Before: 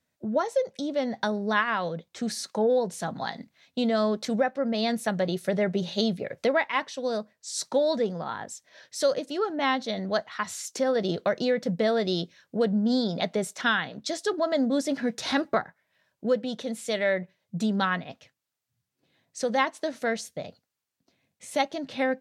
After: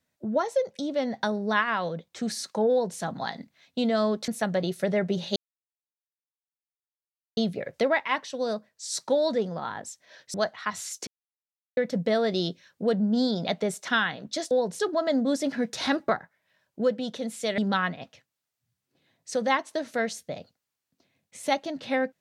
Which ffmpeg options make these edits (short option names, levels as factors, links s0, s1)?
-filter_complex "[0:a]asplit=9[s0][s1][s2][s3][s4][s5][s6][s7][s8];[s0]atrim=end=4.282[s9];[s1]atrim=start=4.928:end=6.01,asetpts=PTS-STARTPTS,afade=t=out:st=1.078:d=0.004:c=hsin,apad=pad_dur=2.01[s10];[s2]atrim=start=6.01:end=8.982,asetpts=PTS-STARTPTS,afade=t=in:d=0.004:c=hsin[s11];[s3]atrim=start=10.068:end=10.8,asetpts=PTS-STARTPTS,afade=t=out:st=0.728:d=0.004:c=hsin[s12];[s4]atrim=start=10.8:end=11.5,asetpts=PTS-STARTPTS,volume=0[s13];[s5]atrim=start=11.5:end=14.242,asetpts=PTS-STARTPTS,afade=t=in:d=0.004:c=hsin[s14];[s6]atrim=start=2.698:end=2.982[s15];[s7]atrim=start=14.238:end=17.032[s16];[s8]atrim=start=17.658[s17];[s10][s11]concat=n=2:v=0:a=1[s18];[s9][s18]acrossfade=d=0.004:c1=hsin:c2=hsin[s19];[s12][s13][s14]concat=n=3:v=0:a=1[s20];[s19][s20]acrossfade=d=0.004:c1=hsin:c2=hsin[s21];[s21][s15]acrossfade=d=0.004:c1=hsin:c2=hsin[s22];[s22][s16]acrossfade=d=0.004:c1=hsin:c2=hsin[s23];[s23][s17]acrossfade=d=0.004:c1=hsin:c2=hsin"